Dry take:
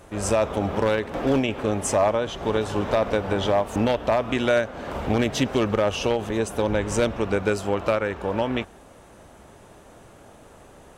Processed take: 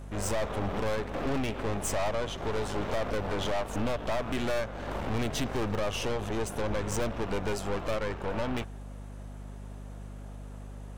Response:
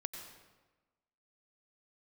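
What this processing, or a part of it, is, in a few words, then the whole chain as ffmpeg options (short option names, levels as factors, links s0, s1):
valve amplifier with mains hum: -af "aeval=exprs='(tanh(25.1*val(0)+0.8)-tanh(0.8))/25.1':c=same,aeval=exprs='val(0)+0.00891*(sin(2*PI*50*n/s)+sin(2*PI*2*50*n/s)/2+sin(2*PI*3*50*n/s)/3+sin(2*PI*4*50*n/s)/4+sin(2*PI*5*50*n/s)/5)':c=same"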